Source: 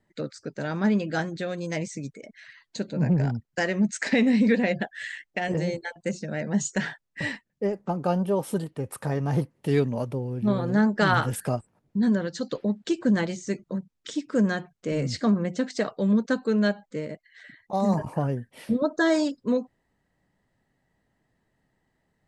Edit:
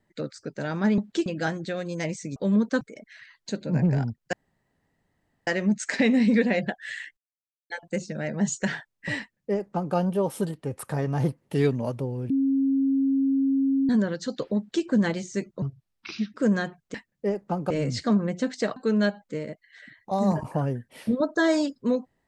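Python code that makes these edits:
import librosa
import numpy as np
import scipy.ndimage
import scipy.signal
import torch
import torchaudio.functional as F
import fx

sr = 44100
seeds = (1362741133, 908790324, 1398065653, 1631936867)

y = fx.edit(x, sr, fx.insert_room_tone(at_s=3.6, length_s=1.14),
    fx.silence(start_s=5.3, length_s=0.53),
    fx.duplicate(start_s=7.32, length_s=0.76, to_s=14.87),
    fx.bleep(start_s=10.43, length_s=1.59, hz=271.0, db=-19.5),
    fx.duplicate(start_s=12.7, length_s=0.28, to_s=0.98),
    fx.speed_span(start_s=13.75, length_s=0.52, speed=0.72),
    fx.move(start_s=15.93, length_s=0.45, to_s=2.08), tone=tone)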